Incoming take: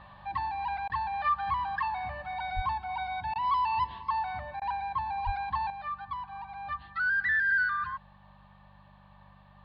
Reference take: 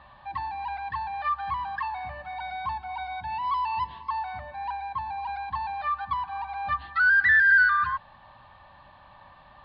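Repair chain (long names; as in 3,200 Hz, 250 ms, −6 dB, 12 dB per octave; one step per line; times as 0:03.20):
hum removal 49 Hz, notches 4
high-pass at the plosives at 0:02.55/0:05.25
repair the gap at 0:00.88/0:03.34/0:04.60, 15 ms
level 0 dB, from 0:05.70 +8 dB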